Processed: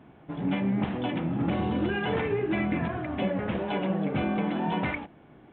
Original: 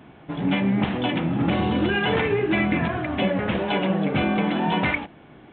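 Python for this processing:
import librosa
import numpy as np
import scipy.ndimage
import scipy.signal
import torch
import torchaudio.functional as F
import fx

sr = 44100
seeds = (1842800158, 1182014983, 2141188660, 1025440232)

y = fx.high_shelf(x, sr, hz=2200.0, db=-8.5)
y = y * 10.0 ** (-5.0 / 20.0)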